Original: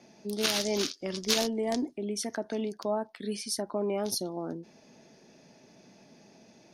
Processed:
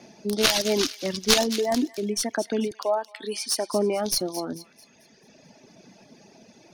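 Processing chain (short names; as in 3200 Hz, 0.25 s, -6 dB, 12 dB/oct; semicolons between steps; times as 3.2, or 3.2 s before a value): tracing distortion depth 0.054 ms; 2.71–3.73 HPF 390 Hz 12 dB/oct; reverb removal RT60 1.7 s; thin delay 0.221 s, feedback 39%, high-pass 1800 Hz, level -12 dB; gain +8 dB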